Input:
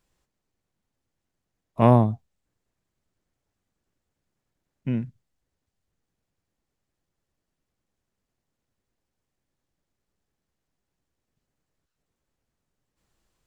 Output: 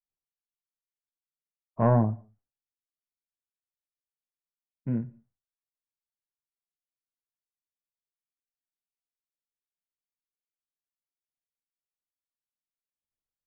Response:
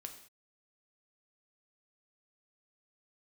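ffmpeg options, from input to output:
-filter_complex "[0:a]acontrast=57,lowpass=f=1.6k:w=0.5412,lowpass=f=1.6k:w=1.3066,agate=range=-33dB:threshold=-52dB:ratio=3:detection=peak,flanger=delay=7.5:depth=3.8:regen=-58:speed=0.36:shape=sinusoidal,asplit=2[a][b];[1:a]atrim=start_sample=2205[c];[b][c]afir=irnorm=-1:irlink=0,volume=-7dB[d];[a][d]amix=inputs=2:normalize=0,volume=-7dB"

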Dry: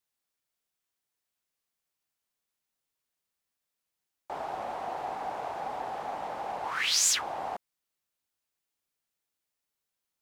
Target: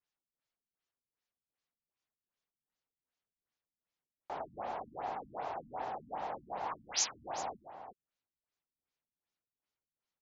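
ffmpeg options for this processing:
-filter_complex "[0:a]asplit=2[a][b];[b]adelay=361.5,volume=-10dB,highshelf=f=4k:g=-8.13[c];[a][c]amix=inputs=2:normalize=0,afftfilt=real='re*lt(b*sr/1024,270*pow(7600/270,0.5+0.5*sin(2*PI*2.6*pts/sr)))':imag='im*lt(b*sr/1024,270*pow(7600/270,0.5+0.5*sin(2*PI*2.6*pts/sr)))':win_size=1024:overlap=0.75,volume=-3.5dB"

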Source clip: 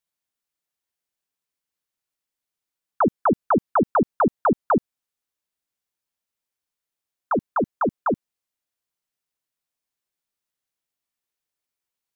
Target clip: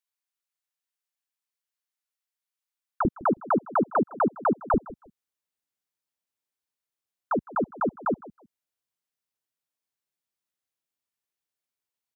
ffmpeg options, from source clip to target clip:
-filter_complex "[0:a]asetnsamples=n=441:p=0,asendcmd='3.05 highpass f 130;4.74 highpass f 58',highpass=870,asplit=2[a][b];[b]adelay=159,lowpass=f=1.7k:p=1,volume=-18.5dB,asplit=2[c][d];[d]adelay=159,lowpass=f=1.7k:p=1,volume=0.22[e];[a][c][e]amix=inputs=3:normalize=0,volume=-4dB"

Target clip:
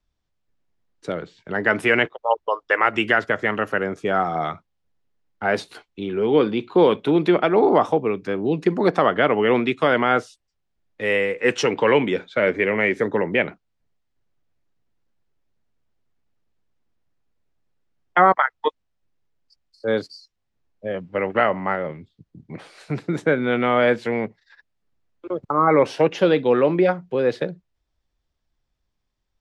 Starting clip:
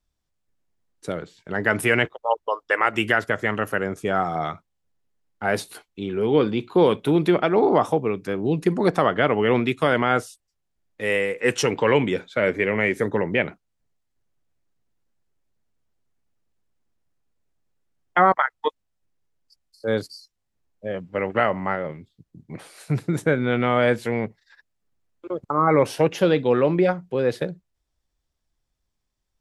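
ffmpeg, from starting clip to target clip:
-filter_complex "[0:a]lowpass=5k,acrossover=split=170|2700[a][b][c];[a]acompressor=threshold=-43dB:ratio=6[d];[d][b][c]amix=inputs=3:normalize=0,volume=2dB"

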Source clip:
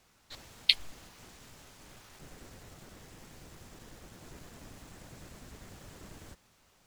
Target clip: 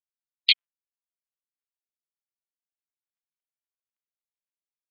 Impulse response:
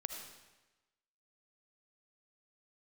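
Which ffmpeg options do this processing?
-filter_complex "[0:a]afftfilt=real='re*gte(hypot(re,im),0.0398)':imag='im*gte(hypot(re,im),0.0398)':win_size=1024:overlap=0.75,equalizer=f=3k:w=0.8:g=14.5,bandreject=f=60:t=h:w=6,bandreject=f=120:t=h:w=6,bandreject=f=180:t=h:w=6,bandreject=f=240:t=h:w=6,bandreject=f=300:t=h:w=6,bandreject=f=360:t=h:w=6,bandreject=f=420:t=h:w=6,bandreject=f=480:t=h:w=6,atempo=1.4,areverse,acompressor=threshold=-28dB:ratio=16,areverse,tiltshelf=f=790:g=-5.5,acrossover=split=960[a][b];[a]acrusher=bits=3:dc=4:mix=0:aa=0.000001[c];[c][b]amix=inputs=2:normalize=0,volume=5.5dB"

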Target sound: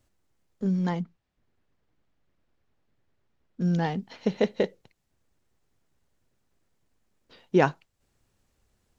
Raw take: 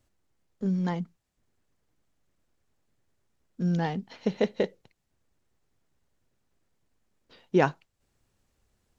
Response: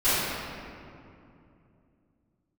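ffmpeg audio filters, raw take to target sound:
-filter_complex "[0:a]asettb=1/sr,asplit=3[a][b][c];[a]atrim=end=1.024[d];[b]atrim=start=1.02:end=3.61,asetpts=PTS-STARTPTS,afade=t=in:d=0.004:c=qsin,afade=t=out:st=2.586:d=0.004:c=qsin,lowpass=4k[e];[c]atrim=start=3.606[f];[d][e]acrossfade=d=0.004:c1=hsin:c2=qsin[g];[g][f]acrossfade=d=0.004:c1=qsin:c2=hsin,volume=1.5dB"

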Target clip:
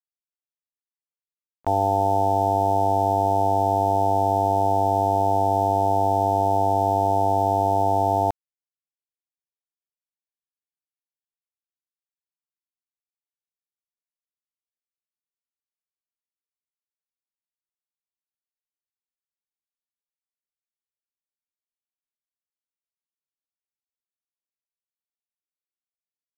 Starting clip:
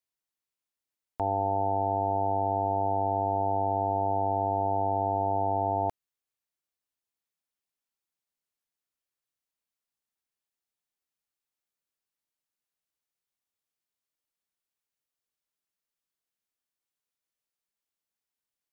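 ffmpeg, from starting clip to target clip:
-af "aresample=11025,aresample=44100,aeval=exprs='val(0)*gte(abs(val(0)),0.00708)':c=same,atempo=0.71,volume=7dB"

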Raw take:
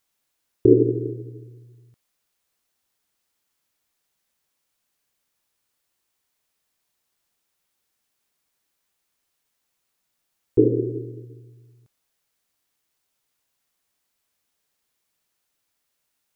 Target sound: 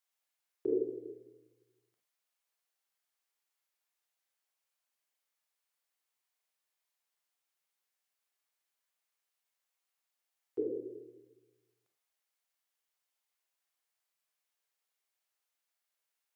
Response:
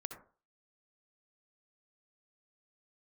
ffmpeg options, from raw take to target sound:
-filter_complex "[0:a]highpass=560[a];[1:a]atrim=start_sample=2205,asetrate=70560,aresample=44100[b];[a][b]afir=irnorm=-1:irlink=0,volume=-3dB"

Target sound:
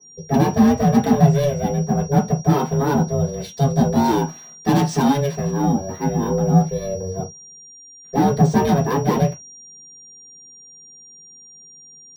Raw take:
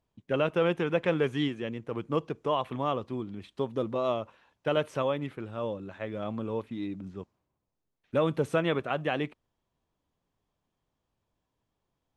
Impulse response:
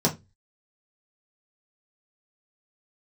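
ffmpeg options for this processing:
-filter_complex "[0:a]asettb=1/sr,asplit=3[a][b][c];[a]atrim=end=3.234[d];[b]atrim=start=3.23:end=5.51,asetpts=PTS-STARTPTS,afade=t=in:d=0.004:c=qsin,afade=t=out:st=2.276:d=0.004:c=qsin,highshelf=f=2.3k:g=11.5[e];[c]atrim=start=5.506[f];[d][e]acrossfade=d=0.004:c1=hsin:c2=qsin[g];[g][f]acrossfade=d=0.004:c1=qsin:c2=hsin,acrusher=samples=3:mix=1:aa=0.000001,asoftclip=type=tanh:threshold=-26.5dB,aeval=exprs='val(0)*sin(2*PI*280*n/s)':c=same,aeval=exprs='val(0)+0.00158*sin(2*PI*5700*n/s)':c=same[h];[1:a]atrim=start_sample=2205,afade=t=out:st=0.14:d=0.01,atrim=end_sample=6615[i];[h][i]afir=irnorm=-1:irlink=0,adynamicequalizer=threshold=0.00891:dfrequency=3400:dqfactor=0.7:tfrequency=3400:tqfactor=0.7:attack=5:release=100:ratio=0.375:range=2:mode=boostabove:tftype=highshelf"

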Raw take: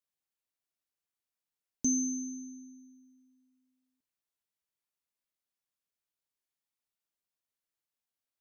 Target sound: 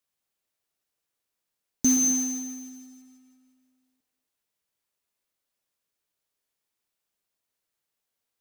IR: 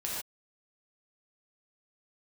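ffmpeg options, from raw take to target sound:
-filter_complex "[0:a]acrusher=bits=3:mode=log:mix=0:aa=0.000001,asplit=2[a][b];[b]equalizer=f=470:t=o:w=1.1:g=10.5[c];[1:a]atrim=start_sample=2205,adelay=123[d];[c][d]afir=irnorm=-1:irlink=0,volume=-13dB[e];[a][e]amix=inputs=2:normalize=0,volume=7.5dB"

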